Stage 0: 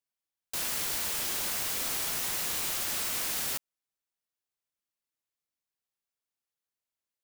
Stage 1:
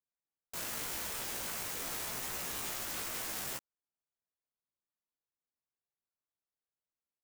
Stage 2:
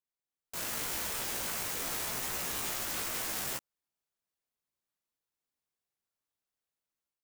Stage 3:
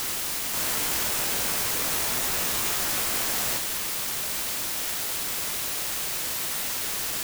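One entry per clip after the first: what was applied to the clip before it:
Wiener smoothing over 15 samples; chorus 0.86 Hz, delay 15.5 ms, depth 2.6 ms
AGC gain up to 6.5 dB; gain -3 dB
requantised 6-bit, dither triangular; gain +6.5 dB

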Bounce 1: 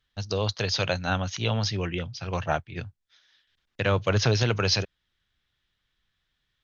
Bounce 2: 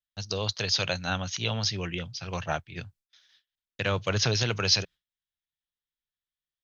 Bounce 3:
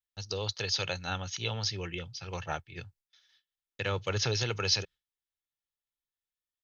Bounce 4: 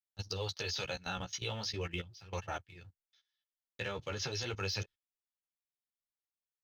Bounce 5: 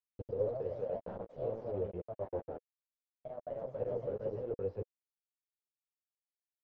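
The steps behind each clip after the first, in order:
high shelf 2400 Hz +9 dB; gate with hold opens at -45 dBFS; bell 170 Hz +3 dB 0.31 oct; gain -5 dB
comb 2.3 ms, depth 38%; gain -5 dB
sample leveller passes 1; level quantiser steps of 17 dB; flange 0.41 Hz, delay 8.9 ms, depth 8.1 ms, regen +2%
bit-crush 6-bit; synth low-pass 490 Hz, resonance Q 4.9; echoes that change speed 0.118 s, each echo +2 st, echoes 2; gain -6 dB

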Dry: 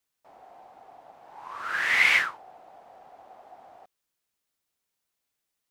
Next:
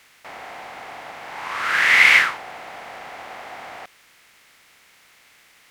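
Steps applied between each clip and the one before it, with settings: per-bin compression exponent 0.6; gain +6 dB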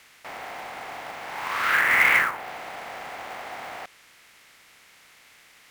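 treble ducked by the level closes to 1600 Hz, closed at -14.5 dBFS; short-mantissa float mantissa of 2-bit

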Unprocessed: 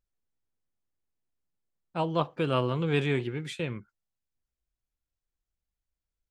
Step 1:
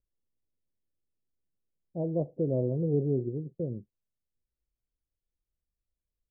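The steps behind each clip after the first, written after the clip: steep low-pass 620 Hz 48 dB/oct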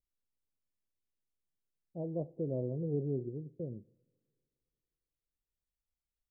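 two-slope reverb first 0.79 s, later 2.8 s, from -21 dB, DRR 19.5 dB; gain -7 dB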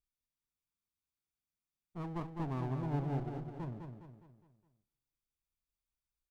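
minimum comb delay 0.85 ms; on a send: feedback echo 0.206 s, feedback 45%, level -6 dB; on the sum: gain -2 dB

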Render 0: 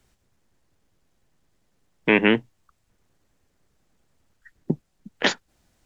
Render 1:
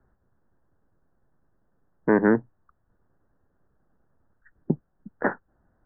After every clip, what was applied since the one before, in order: steep low-pass 1700 Hz 72 dB/oct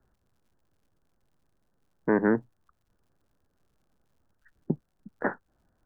crackle 110/s -59 dBFS; gain -4 dB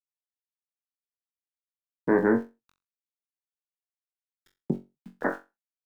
sample gate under -50.5 dBFS; on a send: flutter echo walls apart 3.7 m, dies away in 0.24 s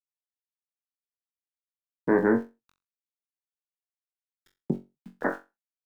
nothing audible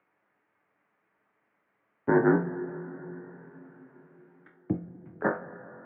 upward compressor, threshold -40 dBFS; mistuned SSB -57 Hz 200–2100 Hz; two-slope reverb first 0.21 s, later 4.9 s, from -20 dB, DRR 4 dB

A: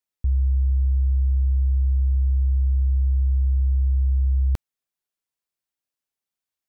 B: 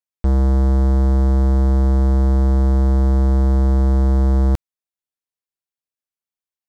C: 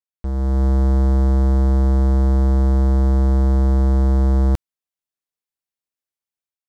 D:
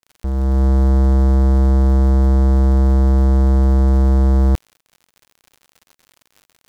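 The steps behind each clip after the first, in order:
sample leveller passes 5; gain +3 dB
AGC gain up to 9 dB; gain -9 dB
crackle 87/s -37 dBFS; gain +2.5 dB

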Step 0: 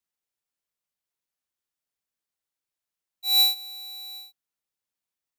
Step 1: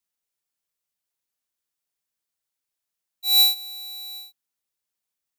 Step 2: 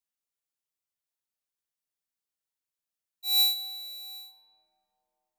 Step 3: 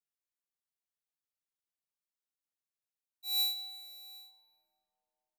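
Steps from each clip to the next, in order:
high shelf 4100 Hz +5 dB
reverb RT60 3.9 s, pre-delay 65 ms, DRR 13 dB; gain -7 dB
feedback echo 0.179 s, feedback 46%, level -20 dB; gain -8 dB

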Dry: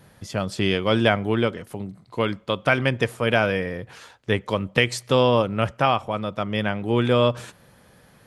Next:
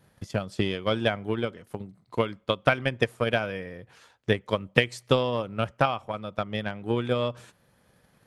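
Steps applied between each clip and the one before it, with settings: transient shaper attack +11 dB, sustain -1 dB; gain -10 dB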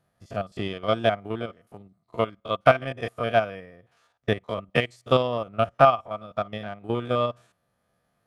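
stepped spectrum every 50 ms; small resonant body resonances 680/1200 Hz, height 12 dB, ringing for 45 ms; upward expander 1.5:1, over -43 dBFS; gain +4 dB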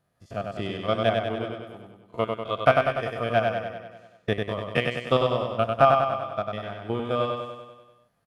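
feedback echo 97 ms, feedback 59%, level -4 dB; gain -2 dB

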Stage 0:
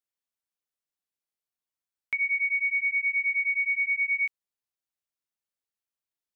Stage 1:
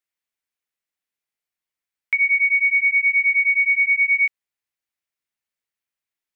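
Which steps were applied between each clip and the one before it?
bell 2100 Hz +7.5 dB 0.9 oct; gain +1.5 dB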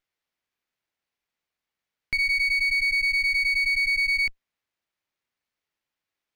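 limiter -21 dBFS, peak gain reduction 9 dB; running maximum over 5 samples; gain +3 dB

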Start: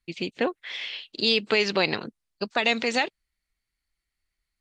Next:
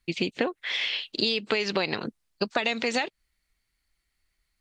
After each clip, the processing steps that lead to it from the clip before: compressor 12:1, threshold -28 dBFS, peak gain reduction 11.5 dB; gain +6 dB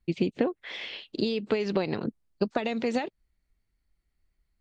tilt shelf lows +8 dB, about 880 Hz; gain -3.5 dB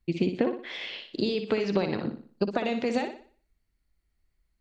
flutter echo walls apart 10.3 m, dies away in 0.44 s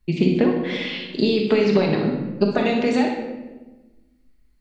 shoebox room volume 650 m³, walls mixed, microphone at 1.4 m; gain +5 dB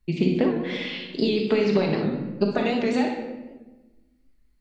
record warp 78 rpm, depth 100 cents; gain -3.5 dB

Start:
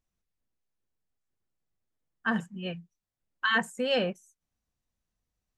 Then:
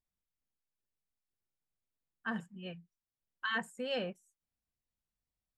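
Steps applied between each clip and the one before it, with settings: notch 6200 Hz, Q 7; gain -9 dB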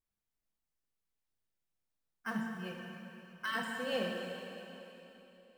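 in parallel at -12 dB: decimation with a swept rate 9×, swing 100% 0.61 Hz; on the sum: plate-style reverb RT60 3.3 s, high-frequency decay 1×, DRR 0 dB; gain -3 dB

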